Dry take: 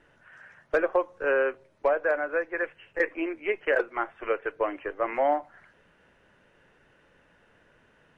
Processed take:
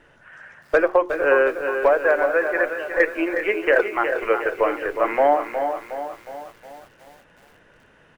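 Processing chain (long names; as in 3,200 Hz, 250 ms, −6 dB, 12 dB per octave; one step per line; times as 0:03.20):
mains-hum notches 60/120/180/240/300/360/420 Hz
on a send: single-tap delay 388 ms −13 dB
on the sum: feedback echo at a low word length 363 ms, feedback 55%, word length 9 bits, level −8 dB
level +7 dB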